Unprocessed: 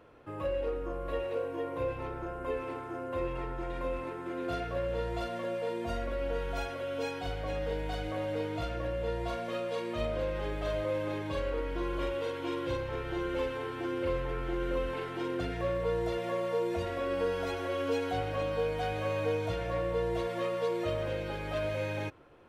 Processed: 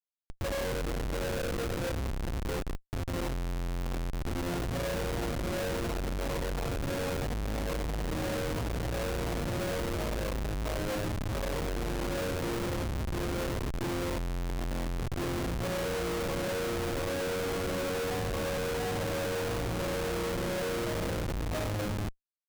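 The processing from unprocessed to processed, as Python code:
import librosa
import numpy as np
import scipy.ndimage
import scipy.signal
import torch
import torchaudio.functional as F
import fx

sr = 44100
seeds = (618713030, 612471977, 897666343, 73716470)

y = fx.envelope_sharpen(x, sr, power=1.5, at=(1.73, 2.29))
y = fx.echo_filtered(y, sr, ms=92, feedback_pct=43, hz=2300.0, wet_db=-7)
y = fx.schmitt(y, sr, flips_db=-31.5)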